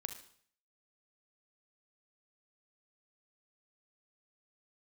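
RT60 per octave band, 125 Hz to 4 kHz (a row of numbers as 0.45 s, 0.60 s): 0.70 s, 0.55 s, 0.60 s, 0.55 s, 0.55 s, 0.55 s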